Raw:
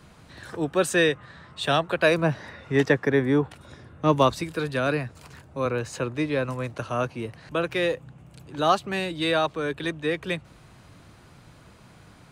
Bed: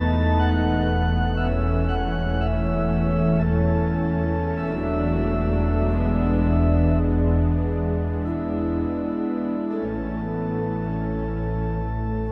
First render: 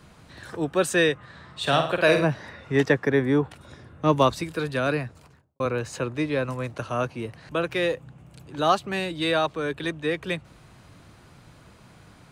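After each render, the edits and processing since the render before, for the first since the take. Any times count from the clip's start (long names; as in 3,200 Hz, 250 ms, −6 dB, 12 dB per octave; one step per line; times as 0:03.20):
0:01.28–0:02.25: flutter between parallel walls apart 8.8 metres, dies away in 0.48 s
0:04.98–0:05.60: fade out and dull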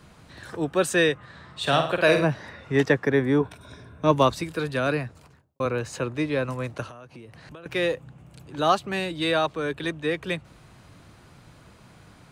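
0:03.40–0:04.11: EQ curve with evenly spaced ripples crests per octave 1.6, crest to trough 9 dB
0:06.87–0:07.66: downward compressor 20 to 1, threshold −39 dBFS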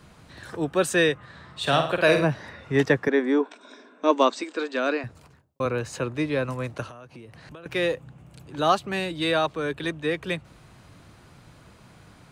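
0:03.08–0:05.04: linear-phase brick-wall band-pass 210–8,500 Hz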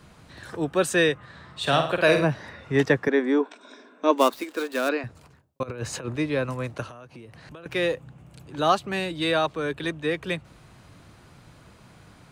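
0:04.18–0:04.89: gap after every zero crossing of 0.061 ms
0:05.63–0:06.16: compressor whose output falls as the input rises −31 dBFS, ratio −0.5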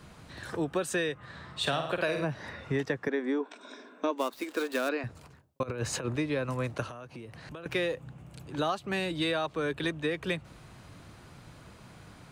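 downward compressor 12 to 1, threshold −26 dBFS, peak gain reduction 13.5 dB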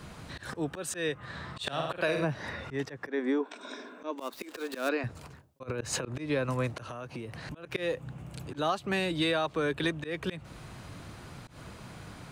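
in parallel at −2 dB: downward compressor, threshold −40 dBFS, peak gain reduction 14.5 dB
on the sum: volume swells 124 ms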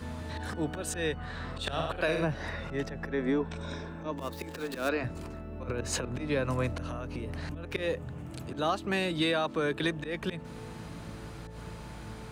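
mix in bed −20 dB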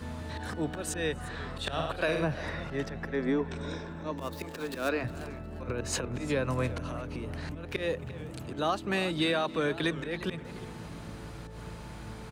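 slap from a distant wall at 47 metres, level −20 dB
feedback echo with a swinging delay time 354 ms, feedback 32%, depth 175 cents, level −16 dB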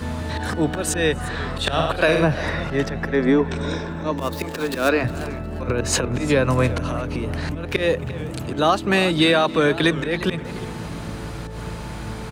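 level +11.5 dB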